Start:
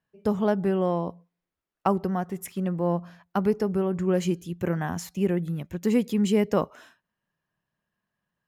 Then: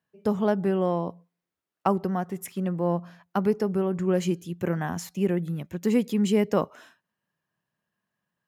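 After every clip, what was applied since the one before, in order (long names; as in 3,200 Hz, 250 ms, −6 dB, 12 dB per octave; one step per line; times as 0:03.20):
high-pass filter 99 Hz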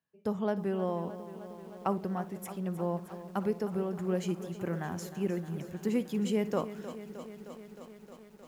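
flutter between parallel walls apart 10.2 metres, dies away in 0.2 s
feedback echo at a low word length 310 ms, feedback 80%, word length 8 bits, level −13 dB
level −7.5 dB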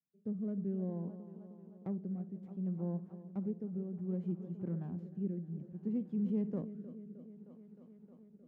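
stylus tracing distortion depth 0.23 ms
rotating-speaker cabinet horn 0.6 Hz
resonant band-pass 190 Hz, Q 1.5
level −1 dB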